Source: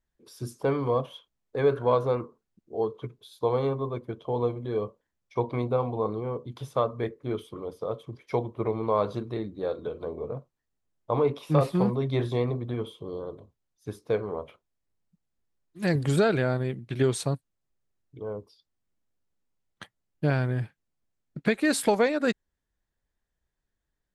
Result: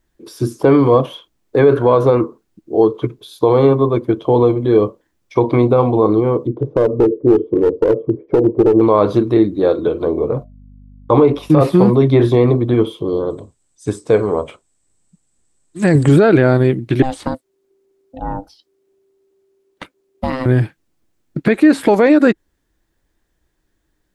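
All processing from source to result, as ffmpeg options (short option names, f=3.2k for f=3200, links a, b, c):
-filter_complex "[0:a]asettb=1/sr,asplit=3[a][b][c];[a]atrim=end=6.474[d];[b]atrim=start=6.47:end=8.81,asetpts=PTS-STARTPTS,afade=t=in:d=0.004:c=qsin,afade=t=out:st=2.336:d=0.004:c=qsin,lowpass=f=450:t=q:w=3,acompressor=threshold=-24dB:ratio=4:attack=3.2:release=140:knee=1:detection=peak,aeval=exprs='clip(val(0),-1,0.0501)':c=same[e];[c]atrim=start=8.806[f];[d][e]acrossfade=d=0.004:c1=hsin:c2=qsin[g];[g][f]acrossfade=d=0.004:c1=qsin:c2=hsin,asettb=1/sr,asplit=3[h][i][j];[h]atrim=end=10.324[k];[i]atrim=start=10.32:end=11.5,asetpts=PTS-STARTPTS,afade=t=in:d=0.004:c=qsin,afade=t=out:st=1.176:d=0.004:c=qsin,agate=range=-33dB:threshold=-44dB:ratio=3:release=100:detection=peak,aeval=exprs='val(0)+0.00178*(sin(2*PI*50*n/s)+sin(2*PI*2*50*n/s)/2+sin(2*PI*3*50*n/s)/3+sin(2*PI*4*50*n/s)/4+sin(2*PI*5*50*n/s)/5)':c=same,asuperstop=centerf=660:order=20:qfactor=7.9[l];[j]atrim=start=11.496[m];[k][l]acrossfade=d=0.004:c1=hsin:c2=qsin[n];[n][m]acrossfade=d=0.004:c1=qsin:c2=hsin,asettb=1/sr,asplit=3[o][p][q];[o]atrim=end=13.304[r];[p]atrim=start=13.3:end=16.09,asetpts=PTS-STARTPTS,afade=t=in:d=0.004:c=qsin,afade=t=out:st=2.786:d=0.004:c=qsin,lowpass=f=8k:t=q:w=14,equalizer=f=330:t=o:w=0.26:g=-6.5[s];[q]atrim=start=16.086[t];[r][s]acrossfade=d=0.004:c1=hsin:c2=qsin[u];[u][t]acrossfade=d=0.004:c1=qsin:c2=hsin,asettb=1/sr,asplit=3[v][w][x];[v]atrim=end=17.024[y];[w]atrim=start=17.02:end=20.46,asetpts=PTS-STARTPTS,afade=t=in:d=0.004:c=qsin,afade=t=out:st=3.436:d=0.004:c=qsin,acrossover=split=250|3900[z][aa][ab];[z]acompressor=threshold=-39dB:ratio=4[ac];[aa]acompressor=threshold=-32dB:ratio=4[ad];[ab]acompressor=threshold=-43dB:ratio=4[ae];[ac][ad][ae]amix=inputs=3:normalize=0,aeval=exprs='val(0)*sin(2*PI*390*n/s)':c=same[af];[x]atrim=start=20.456[ag];[y][af]acrossfade=d=0.004:c1=hsin:c2=qsin[ah];[ah][ag]acrossfade=d=0.004:c1=qsin:c2=hsin,acrossover=split=2600[ai][aj];[aj]acompressor=threshold=-49dB:ratio=4:attack=1:release=60[ak];[ai][ak]amix=inputs=2:normalize=0,equalizer=f=320:w=3.4:g=10,alimiter=level_in=15.5dB:limit=-1dB:release=50:level=0:latency=1,volume=-1dB"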